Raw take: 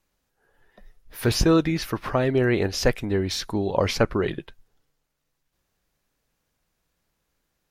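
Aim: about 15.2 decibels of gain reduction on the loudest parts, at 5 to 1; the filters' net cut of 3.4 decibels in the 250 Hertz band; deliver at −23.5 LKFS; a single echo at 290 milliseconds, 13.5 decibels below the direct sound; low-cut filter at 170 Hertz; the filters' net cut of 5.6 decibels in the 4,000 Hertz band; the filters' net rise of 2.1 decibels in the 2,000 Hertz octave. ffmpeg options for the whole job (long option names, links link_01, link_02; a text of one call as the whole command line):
ffmpeg -i in.wav -af "highpass=170,equalizer=frequency=250:width_type=o:gain=-4,equalizer=frequency=2000:width_type=o:gain=4.5,equalizer=frequency=4000:width_type=o:gain=-8.5,acompressor=threshold=-35dB:ratio=5,aecho=1:1:290:0.211,volume=14.5dB" out.wav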